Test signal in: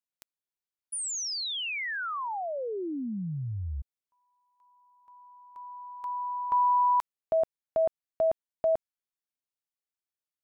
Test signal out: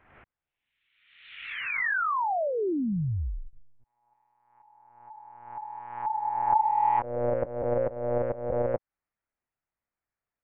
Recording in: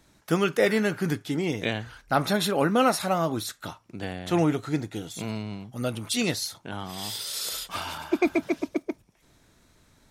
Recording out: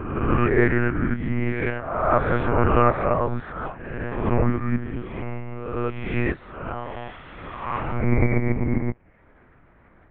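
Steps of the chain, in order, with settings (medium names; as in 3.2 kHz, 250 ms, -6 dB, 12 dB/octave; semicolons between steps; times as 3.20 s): reverse spectral sustain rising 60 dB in 0.99 s; dynamic bell 620 Hz, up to -3 dB, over -35 dBFS, Q 6.4; in parallel at 0 dB: compression 8:1, threshold -37 dBFS; on the sum: mistuned SSB -110 Hz 160–2300 Hz; monotone LPC vocoder at 8 kHz 120 Hz; trim +1.5 dB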